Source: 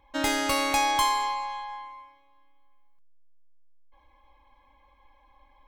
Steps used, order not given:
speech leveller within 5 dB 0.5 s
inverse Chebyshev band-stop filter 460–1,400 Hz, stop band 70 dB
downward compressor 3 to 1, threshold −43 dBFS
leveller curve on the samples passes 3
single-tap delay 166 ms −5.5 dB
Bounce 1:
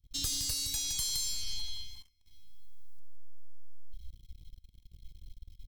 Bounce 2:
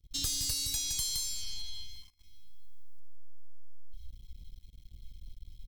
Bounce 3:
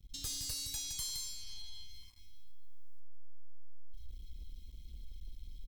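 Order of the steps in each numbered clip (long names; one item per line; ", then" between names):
inverse Chebyshev band-stop filter, then downward compressor, then single-tap delay, then leveller curve on the samples, then speech leveller
single-tap delay, then speech leveller, then inverse Chebyshev band-stop filter, then downward compressor, then leveller curve on the samples
downward compressor, then inverse Chebyshev band-stop filter, then speech leveller, then single-tap delay, then leveller curve on the samples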